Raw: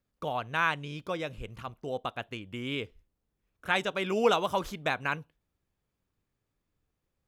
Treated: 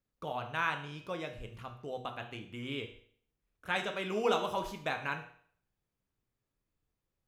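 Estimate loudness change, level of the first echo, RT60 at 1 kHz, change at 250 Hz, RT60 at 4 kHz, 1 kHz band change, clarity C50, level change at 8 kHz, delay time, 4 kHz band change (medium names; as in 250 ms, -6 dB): -5.0 dB, no echo, 0.55 s, -5.0 dB, 0.55 s, -4.5 dB, 10.0 dB, -5.0 dB, no echo, -5.0 dB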